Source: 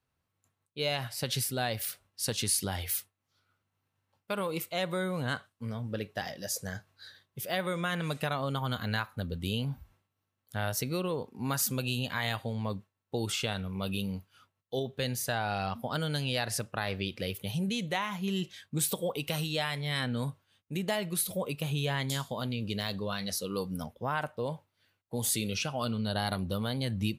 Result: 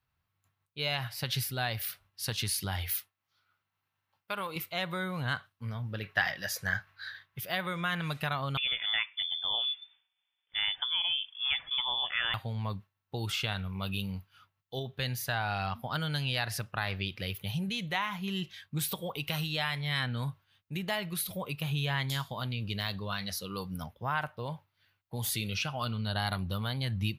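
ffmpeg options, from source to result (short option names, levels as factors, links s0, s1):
-filter_complex "[0:a]asettb=1/sr,asplit=3[s0][s1][s2];[s0]atrim=end=2.964[s3];[s1]atrim=start=2.96:end=4.56,asetpts=PTS-STARTPTS,afade=t=in:d=0.004:c=qsin,afade=t=out:st=1.596:d=0.004:c=qsin,highpass=f=280:p=1[s4];[s2]atrim=start=4.556[s5];[s3][s4]acrossfade=d=0.004:c1=hsin:c2=qsin[s6];[s6][s5]acrossfade=d=0.004:c1=qsin:c2=hsin,asettb=1/sr,asplit=3[s7][s8][s9];[s7]atrim=end=6.034[s10];[s8]atrim=start=6.03:end=7.4,asetpts=PTS-STARTPTS,afade=t=in:d=0.004:c=qsin,afade=t=out:st=1.366:d=0.004:c=qsin,equalizer=f=1700:t=o:w=1.8:g=11[s11];[s9]atrim=start=7.396[s12];[s10][s11]acrossfade=d=0.004:c1=hsin:c2=qsin[s13];[s13][s12]acrossfade=d=0.004:c1=qsin:c2=hsin,asettb=1/sr,asplit=3[s14][s15][s16];[s14]atrim=end=8.574[s17];[s15]atrim=start=8.57:end=12.34,asetpts=PTS-STARTPTS,afade=t=in:d=0.004:c=qsin,afade=t=out:st=3.766:d=0.004:c=qsin,lowpass=f=3100:t=q:w=0.5098,lowpass=f=3100:t=q:w=0.6013,lowpass=f=3100:t=q:w=0.9,lowpass=f=3100:t=q:w=2.563,afreqshift=-3600[s18];[s16]atrim=start=12.336[s19];[s17][s18]acrossfade=d=0.004:c1=hsin:c2=qsin[s20];[s20][s19]acrossfade=d=0.004:c1=qsin:c2=hsin,equalizer=f=250:t=o:w=1:g=-8,equalizer=f=500:t=o:w=1:g=-9,equalizer=f=8000:t=o:w=1:g=-12,volume=1.41"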